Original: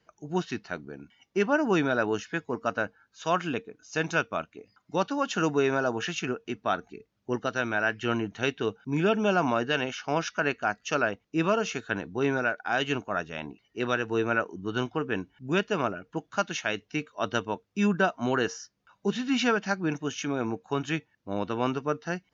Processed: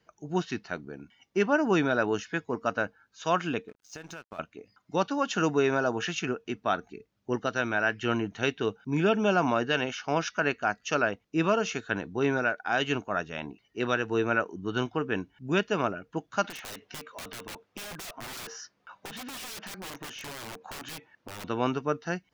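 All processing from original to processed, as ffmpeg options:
ffmpeg -i in.wav -filter_complex "[0:a]asettb=1/sr,asplit=3[link_01][link_02][link_03];[link_01]atrim=end=3.684[link_04];[link_02]atrim=start=3.68:end=4.39,asetpts=PTS-STARTPTS,afade=type=in:duration=0.004:curve=qsin,afade=type=out:start_time=0.706:duration=0.004:curve=qsin,acompressor=threshold=-37dB:ratio=12:attack=3.2:release=140:knee=1:detection=peak,aeval=exprs='sgn(val(0))*max(abs(val(0))-0.00188,0)':channel_layout=same[link_05];[link_03]atrim=start=4.386[link_06];[link_04][link_05]acrossfade=duration=0.004:curve1=hsin:curve2=qsin[link_07];[link_07][link_06]acrossfade=duration=0.004:curve1=qsin:curve2=hsin,asettb=1/sr,asplit=3[link_08][link_09][link_10];[link_08]atrim=end=16.444[link_11];[link_09]atrim=start=16.44:end=21.44,asetpts=PTS-STARTPTS,afade=type=in:duration=0.004:curve=qsin,afade=type=out:start_time=4.996:duration=0.004:curve=qsin,asplit=2[link_12][link_13];[link_13]highpass=frequency=720:poles=1,volume=20dB,asoftclip=type=tanh:threshold=-12.5dB[link_14];[link_12][link_14]amix=inputs=2:normalize=0,lowpass=frequency=1400:poles=1,volume=-6dB,aeval=exprs='(mod(13.3*val(0)+1,2)-1)/13.3':channel_layout=same,acompressor=threshold=-38dB:ratio=12:attack=3.2:release=140:knee=1:detection=peak[link_15];[link_10]atrim=start=21.436[link_16];[link_11][link_15]acrossfade=duration=0.004:curve1=hsin:curve2=qsin[link_17];[link_17][link_16]acrossfade=duration=0.004:curve1=qsin:curve2=hsin" out.wav

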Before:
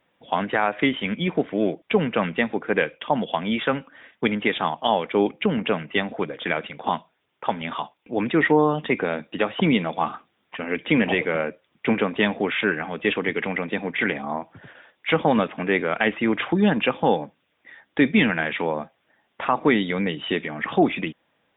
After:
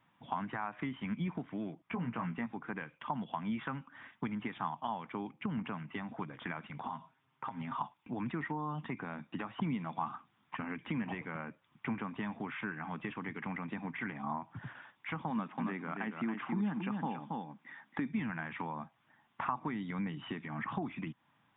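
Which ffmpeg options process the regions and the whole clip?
ffmpeg -i in.wav -filter_complex "[0:a]asettb=1/sr,asplit=3[link_01][link_02][link_03];[link_01]atrim=end=1.824[link_04];[link_02]atrim=start=1.82:end=2.46,asetpts=PTS-STARTPTS,afade=type=in:duration=0.004:curve=qsin,afade=type=out:start_time=0.636:duration=0.004:curve=qsin,lowpass=2800,asplit=2[link_05][link_06];[link_06]adelay=17,volume=-4.5dB[link_07];[link_05][link_07]amix=inputs=2:normalize=0,atrim=end_sample=28224[link_08];[link_03]atrim=start=2.456[link_09];[link_04][link_08]acrossfade=duration=0.004:curve1=hsin:curve2=qsin[link_10];[link_10][link_09]acrossfade=duration=0.004:curve1=qsin:curve2=hsin,asettb=1/sr,asplit=3[link_11][link_12][link_13];[link_11]atrim=end=6.864[link_14];[link_12]atrim=start=6.86:end=7.81,asetpts=PTS-STARTPTS,afade=type=in:duration=0.004:curve=qsin,afade=type=out:start_time=0.946:duration=0.004:curve=qsin,aemphasis=mode=reproduction:type=50fm,aecho=1:1:7.5:0.48,atrim=end_sample=41895,acompressor=threshold=-35dB:ratio=5:attack=3.2:release=140:knee=1:detection=peak[link_15];[link_13]atrim=start=7.806[link_16];[link_14][link_15]acrossfade=duration=0.004:curve1=hsin:curve2=qsin[link_17];[link_17][link_16]acrossfade=duration=0.004:curve1=qsin:curve2=hsin,asettb=1/sr,asplit=3[link_18][link_19][link_20];[link_18]atrim=end=15.304[link_21];[link_19]atrim=start=15.3:end=18.12,asetpts=PTS-STARTPTS,afade=type=in:duration=0.004:curve=qsin,afade=type=out:start_time=2.816:duration=0.004:curve=qsin,lowshelf=frequency=130:width_type=q:width=1.5:gain=-11.5,aecho=1:1:276:0.473,atrim=end_sample=124362[link_22];[link_20]atrim=start=18.116[link_23];[link_21][link_22]acrossfade=duration=0.004:curve1=hsin:curve2=qsin[link_24];[link_24][link_23]acrossfade=duration=0.004:curve1=qsin:curve2=hsin,acompressor=threshold=-33dB:ratio=4,equalizer=frequency=125:width_type=o:width=1:gain=11,equalizer=frequency=250:width_type=o:width=1:gain=5,equalizer=frequency=500:width_type=o:width=1:gain=-12,equalizer=frequency=1000:width_type=o:width=1:gain=11,acrossover=split=2500[link_25][link_26];[link_26]acompressor=threshold=-55dB:ratio=4:attack=1:release=60[link_27];[link_25][link_27]amix=inputs=2:normalize=0,volume=-6.5dB" out.wav

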